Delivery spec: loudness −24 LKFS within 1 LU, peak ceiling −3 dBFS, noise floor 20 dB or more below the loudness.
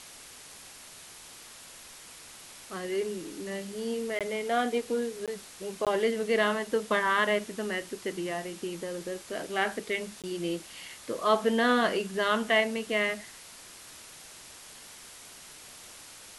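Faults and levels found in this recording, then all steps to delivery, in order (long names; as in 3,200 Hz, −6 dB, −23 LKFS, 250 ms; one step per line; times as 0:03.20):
number of dropouts 4; longest dropout 17 ms; background noise floor −49 dBFS; target noise floor −50 dBFS; integrated loudness −30.0 LKFS; sample peak −11.5 dBFS; target loudness −24.0 LKFS
→ repair the gap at 0:04.19/0:05.26/0:05.85/0:10.22, 17 ms
broadband denoise 6 dB, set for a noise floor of −49 dBFS
level +6 dB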